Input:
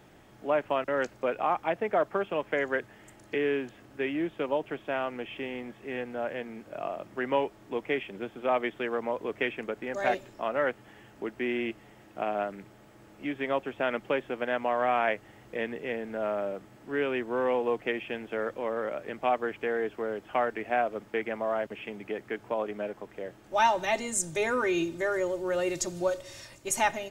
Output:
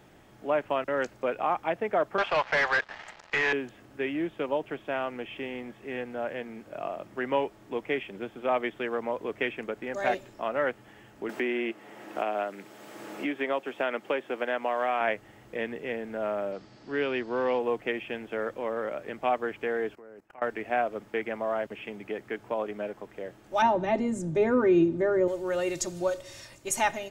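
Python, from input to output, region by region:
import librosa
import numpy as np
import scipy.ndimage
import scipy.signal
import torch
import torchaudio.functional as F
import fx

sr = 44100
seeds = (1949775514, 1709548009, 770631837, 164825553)

y = fx.chain(x, sr, fx.cheby2_highpass(hz=210.0, order=4, stop_db=60),
    fx.leveller(passes=5),
    fx.air_absorb(metres=190.0), at=(2.18, 3.53))
y = fx.chain(y, sr, fx.highpass(hz=260.0, slope=12),
    fx.band_squash(depth_pct=70), at=(11.29, 15.01))
y = fx.chain(y, sr, fx.lowpass(hz=6800.0, slope=24),
    fx.peak_eq(hz=4600.0, db=14.0, octaves=0.56), at=(16.52, 17.59))
y = fx.chain(y, sr, fx.peak_eq(hz=3300.0, db=-14.0, octaves=0.31),
    fx.level_steps(step_db=24), at=(19.95, 20.42))
y = fx.chain(y, sr, fx.lowpass(hz=1100.0, slope=6),
    fx.peak_eq(hz=220.0, db=10.5, octaves=2.3), at=(23.62, 25.28))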